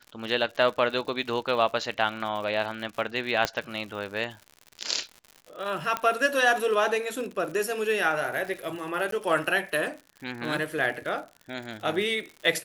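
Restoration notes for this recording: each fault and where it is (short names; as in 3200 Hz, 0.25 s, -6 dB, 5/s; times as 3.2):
crackle 100/s -35 dBFS
3.45 pop -9 dBFS
5.97 pop -13 dBFS
9.11–9.12 gap 13 ms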